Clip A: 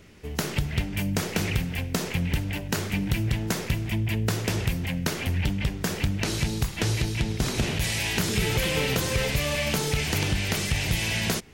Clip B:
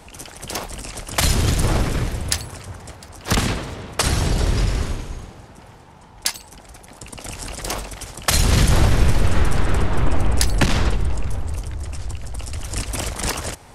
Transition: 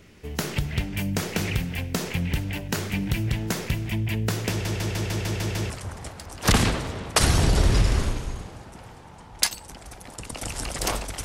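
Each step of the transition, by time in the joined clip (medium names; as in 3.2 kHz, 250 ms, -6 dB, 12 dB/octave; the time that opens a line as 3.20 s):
clip A
4.50 s: stutter in place 0.15 s, 8 plays
5.70 s: go over to clip B from 2.53 s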